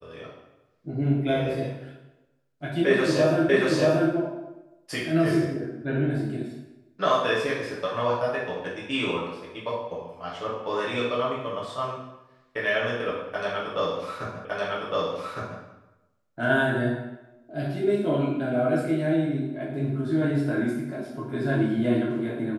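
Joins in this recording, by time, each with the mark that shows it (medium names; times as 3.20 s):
3.49 s: repeat of the last 0.63 s
14.45 s: repeat of the last 1.16 s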